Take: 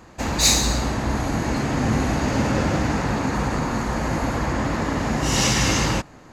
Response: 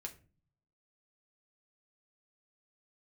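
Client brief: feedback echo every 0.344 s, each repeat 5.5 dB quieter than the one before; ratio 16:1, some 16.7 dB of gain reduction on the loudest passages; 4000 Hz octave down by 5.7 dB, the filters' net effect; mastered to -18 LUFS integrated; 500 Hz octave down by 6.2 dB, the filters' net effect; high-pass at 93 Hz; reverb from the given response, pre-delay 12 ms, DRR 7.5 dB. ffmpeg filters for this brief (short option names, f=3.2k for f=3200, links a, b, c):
-filter_complex "[0:a]highpass=93,equalizer=f=500:t=o:g=-8,equalizer=f=4k:t=o:g=-7,acompressor=threshold=-33dB:ratio=16,aecho=1:1:344|688|1032|1376|1720|2064|2408:0.531|0.281|0.149|0.079|0.0419|0.0222|0.0118,asplit=2[a][b];[1:a]atrim=start_sample=2205,adelay=12[c];[b][c]afir=irnorm=-1:irlink=0,volume=-4dB[d];[a][d]amix=inputs=2:normalize=0,volume=17dB"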